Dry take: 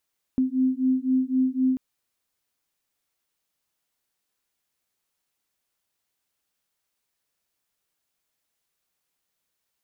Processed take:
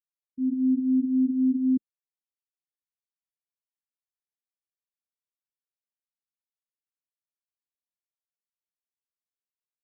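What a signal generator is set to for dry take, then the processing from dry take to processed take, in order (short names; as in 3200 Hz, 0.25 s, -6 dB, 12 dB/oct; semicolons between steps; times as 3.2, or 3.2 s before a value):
beating tones 257 Hz, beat 3.9 Hz, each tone -23 dBFS 1.39 s
transient shaper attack -8 dB, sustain +11 dB; elliptic low-pass 520 Hz; spectral expander 1.5:1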